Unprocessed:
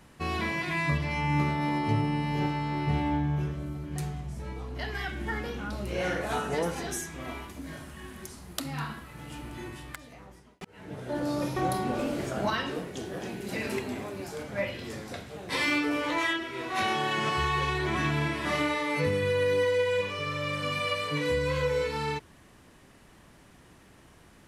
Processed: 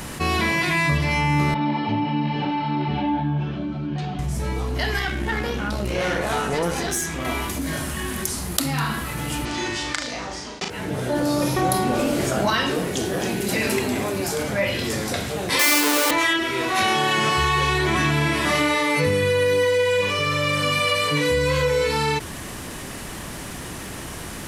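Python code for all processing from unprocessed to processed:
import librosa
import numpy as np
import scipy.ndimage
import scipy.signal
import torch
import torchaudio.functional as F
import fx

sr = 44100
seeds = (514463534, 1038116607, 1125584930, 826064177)

y = fx.chain(x, sr, fx.cabinet(low_hz=160.0, low_slope=12, high_hz=3700.0, hz=(230.0, 450.0, 1200.0, 2000.0), db=(4, -8, -6, -10)),
    fx.ensemble(), at=(1.54, 4.19))
y = fx.chain(y, sr, fx.high_shelf(hz=7000.0, db=-7.0),
    fx.tube_stage(drive_db=25.0, bias=0.7), at=(4.99, 7.25))
y = fx.chain(y, sr, fx.lowpass(hz=5700.0, slope=24),
    fx.bass_treble(bass_db=-8, treble_db=11),
    fx.room_flutter(wall_m=6.4, rt60_s=0.32), at=(9.45, 10.7))
y = fx.chain(y, sr, fx.halfwave_hold(),
    fx.highpass(hz=400.0, slope=12), at=(15.59, 16.11))
y = fx.high_shelf(y, sr, hz=4900.0, db=8.5)
y = fx.env_flatten(y, sr, amount_pct=50)
y = y * librosa.db_to_amplitude(4.0)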